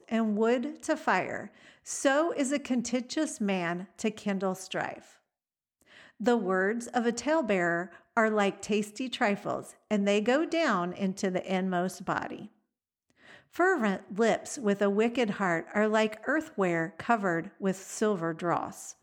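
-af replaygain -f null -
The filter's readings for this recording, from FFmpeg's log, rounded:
track_gain = +9.6 dB
track_peak = 0.187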